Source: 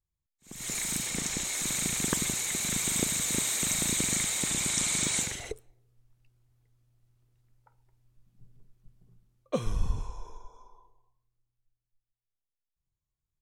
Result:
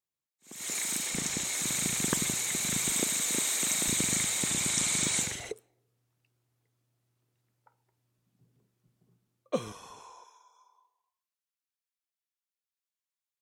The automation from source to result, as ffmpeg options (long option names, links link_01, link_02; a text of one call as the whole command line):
ffmpeg -i in.wav -af "asetnsamples=nb_out_samples=441:pad=0,asendcmd='1.14 highpass f 84;2.9 highpass f 230;3.88 highpass f 76;5.49 highpass f 190;9.72 highpass f 600;10.24 highpass f 1300',highpass=260" out.wav